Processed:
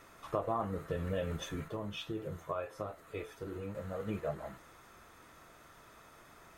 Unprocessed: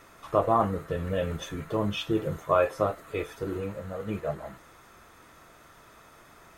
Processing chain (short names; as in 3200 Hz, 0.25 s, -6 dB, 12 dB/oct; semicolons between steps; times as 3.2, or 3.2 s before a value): compressor 4:1, threshold -27 dBFS, peak gain reduction 8.5 dB; 1.68–3.75 flange 1.9 Hz, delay 8.9 ms, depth 3.7 ms, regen +72%; gain -4 dB